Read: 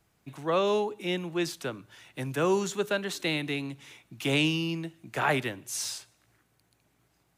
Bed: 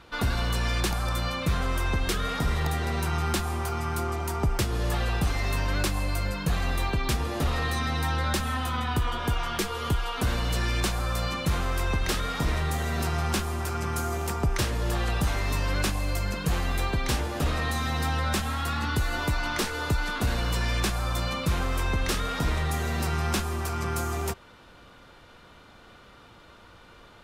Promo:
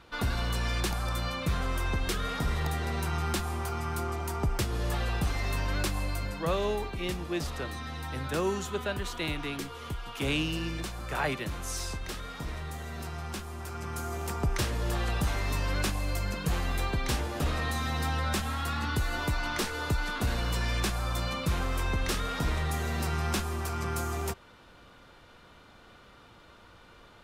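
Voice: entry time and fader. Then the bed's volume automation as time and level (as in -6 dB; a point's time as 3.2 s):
5.95 s, -4.5 dB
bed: 6.04 s -3.5 dB
6.73 s -10.5 dB
13.43 s -10.5 dB
14.47 s -3 dB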